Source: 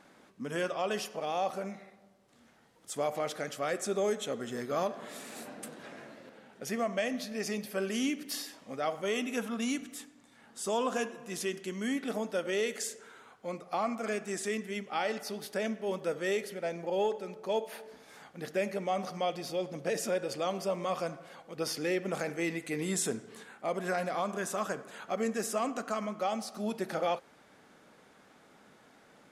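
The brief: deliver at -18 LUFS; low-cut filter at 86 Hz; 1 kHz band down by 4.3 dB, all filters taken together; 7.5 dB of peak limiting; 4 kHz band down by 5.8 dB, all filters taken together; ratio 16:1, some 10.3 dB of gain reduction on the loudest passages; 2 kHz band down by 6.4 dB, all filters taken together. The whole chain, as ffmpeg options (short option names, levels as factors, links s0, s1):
-af "highpass=86,equalizer=f=1000:t=o:g=-5,equalizer=f=2000:t=o:g=-5,equalizer=f=4000:t=o:g=-6,acompressor=threshold=0.0126:ratio=16,volume=23.7,alimiter=limit=0.398:level=0:latency=1"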